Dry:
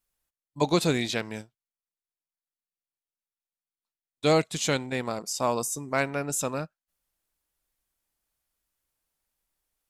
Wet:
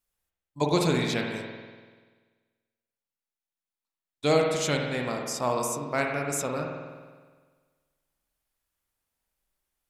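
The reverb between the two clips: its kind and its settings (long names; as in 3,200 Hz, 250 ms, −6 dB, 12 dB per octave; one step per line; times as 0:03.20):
spring reverb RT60 1.5 s, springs 48 ms, chirp 50 ms, DRR 1 dB
level −2 dB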